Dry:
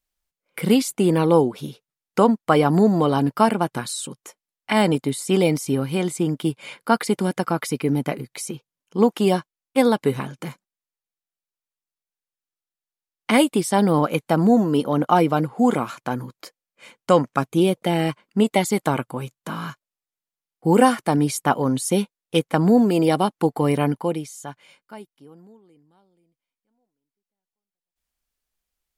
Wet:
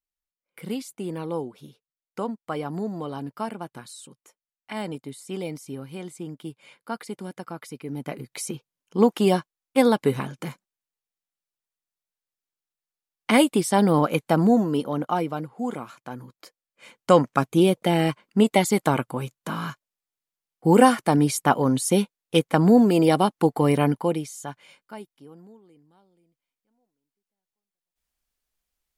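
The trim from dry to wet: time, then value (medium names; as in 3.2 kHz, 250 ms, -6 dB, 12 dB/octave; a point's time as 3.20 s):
7.85 s -13.5 dB
8.37 s -1 dB
14.37 s -1 dB
15.50 s -11 dB
16.08 s -11 dB
17.11 s 0 dB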